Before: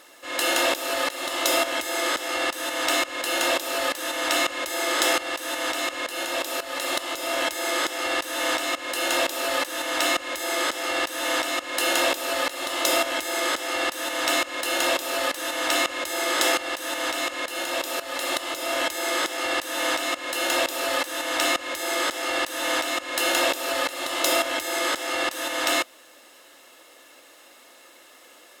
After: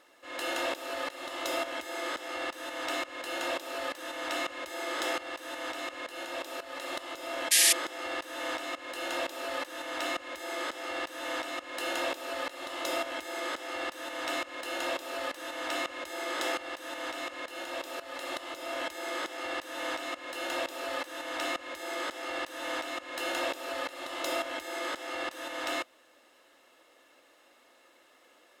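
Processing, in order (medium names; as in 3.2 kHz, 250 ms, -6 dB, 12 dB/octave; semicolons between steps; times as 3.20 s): treble shelf 4.6 kHz -10 dB; painted sound noise, 7.51–7.73 s, 1.6–12 kHz -13 dBFS; trim -8.5 dB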